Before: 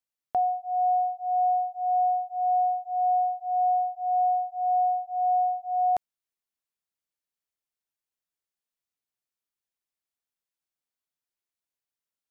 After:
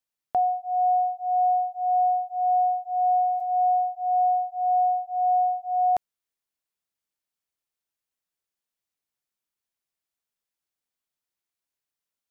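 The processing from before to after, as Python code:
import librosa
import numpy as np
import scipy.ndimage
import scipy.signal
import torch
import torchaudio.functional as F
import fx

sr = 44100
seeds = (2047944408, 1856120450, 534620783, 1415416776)

y = fx.sustainer(x, sr, db_per_s=28.0, at=(3.16, 3.65), fade=0.02)
y = y * librosa.db_to_amplitude(2.0)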